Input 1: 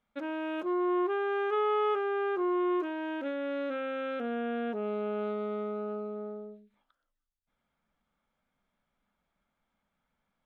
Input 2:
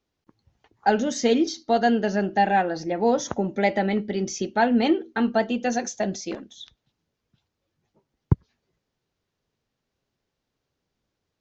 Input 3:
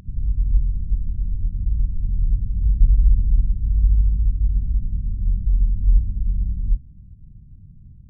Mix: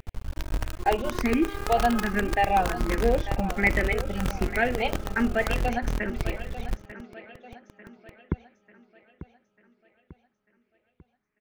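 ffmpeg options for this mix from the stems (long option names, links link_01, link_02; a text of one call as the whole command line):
ffmpeg -i stem1.wav -i stem2.wav -i stem3.wav -filter_complex "[0:a]adynamicequalizer=threshold=0.00398:dfrequency=1300:dqfactor=2.7:tfrequency=1300:tqfactor=2.7:attack=5:release=100:ratio=0.375:range=4:mode=boostabove:tftype=bell,adelay=150,volume=-4.5dB,asplit=3[link_01][link_02][link_03];[link_01]atrim=end=5.58,asetpts=PTS-STARTPTS,afade=type=out:start_time=5.576:duration=0.004:curve=hsin[link_04];[link_02]atrim=start=5.58:end=6.19,asetpts=PTS-STARTPTS,volume=0[link_05];[link_03]atrim=start=6.19,asetpts=PTS-STARTPTS,afade=type=in:duration=0.004:curve=hsin[link_06];[link_04][link_05][link_06]concat=n=3:v=0:a=1,asplit=2[link_07][link_08];[link_08]volume=-15dB[link_09];[1:a]lowpass=frequency=2300:width_type=q:width=3.3,asplit=2[link_10][link_11];[link_11]afreqshift=1.3[link_12];[link_10][link_12]amix=inputs=2:normalize=1,volume=-2dB,asplit=2[link_13][link_14];[link_14]volume=-13.5dB[link_15];[2:a]flanger=delay=0.8:depth=7:regen=62:speed=1.6:shape=sinusoidal,volume=-1.5dB[link_16];[link_07][link_16]amix=inputs=2:normalize=0,acrusher=bits=4:dc=4:mix=0:aa=0.000001,acompressor=threshold=-26dB:ratio=3,volume=0dB[link_17];[link_09][link_15]amix=inputs=2:normalize=0,aecho=0:1:894|1788|2682|3576|4470|5364|6258:1|0.47|0.221|0.104|0.0488|0.0229|0.0108[link_18];[link_13][link_17][link_18]amix=inputs=3:normalize=0" out.wav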